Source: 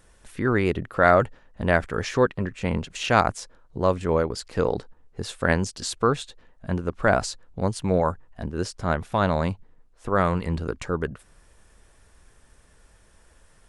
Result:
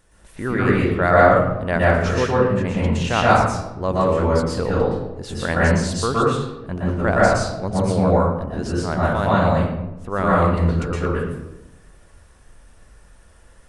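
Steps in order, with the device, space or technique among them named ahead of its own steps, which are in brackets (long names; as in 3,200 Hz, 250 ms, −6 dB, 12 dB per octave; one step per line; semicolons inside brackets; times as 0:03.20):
bathroom (convolution reverb RT60 0.95 s, pre-delay 111 ms, DRR −6.5 dB)
level −2.5 dB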